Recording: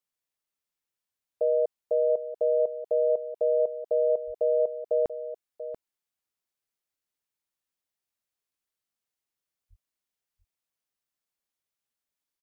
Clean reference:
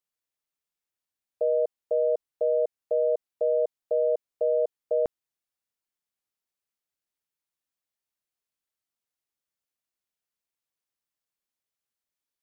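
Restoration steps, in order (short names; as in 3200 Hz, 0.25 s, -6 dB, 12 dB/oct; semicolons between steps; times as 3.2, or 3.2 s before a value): 4.26–4.38 HPF 140 Hz 24 dB/oct; 9.69–9.81 HPF 140 Hz 24 dB/oct; inverse comb 0.687 s -12 dB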